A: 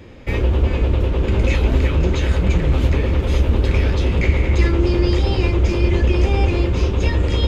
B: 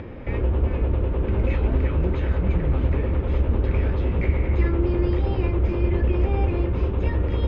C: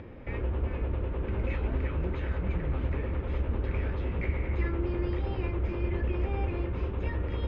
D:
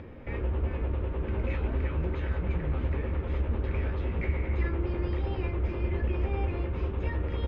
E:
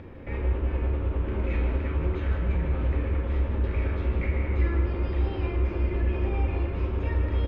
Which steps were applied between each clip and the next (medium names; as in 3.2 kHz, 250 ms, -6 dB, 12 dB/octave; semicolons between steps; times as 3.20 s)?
upward compressor, threshold -21 dBFS; low-pass 1.8 kHz 12 dB/octave; trim -5 dB
dynamic bell 1.8 kHz, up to +5 dB, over -46 dBFS, Q 0.74; trim -9 dB
doubling 13 ms -11 dB
delay 155 ms -7.5 dB; on a send at -3.5 dB: reverberation RT60 0.45 s, pre-delay 22 ms